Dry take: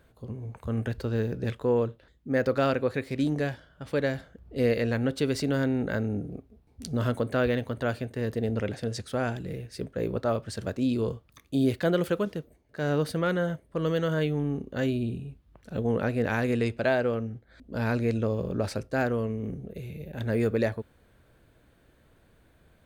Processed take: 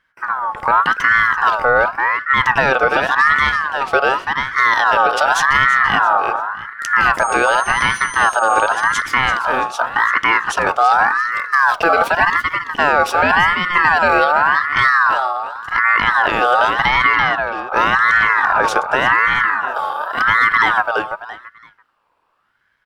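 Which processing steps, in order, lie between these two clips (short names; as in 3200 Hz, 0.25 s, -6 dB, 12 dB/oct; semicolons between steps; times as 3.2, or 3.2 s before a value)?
gate with hold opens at -48 dBFS; high shelf 6400 Hz -9 dB; 7.19–8.67 whine 7600 Hz -44 dBFS; feedback echo 0.336 s, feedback 23%, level -9.5 dB; maximiser +21 dB; ring modulator with a swept carrier 1300 Hz, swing 25%, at 0.88 Hz; gain -2 dB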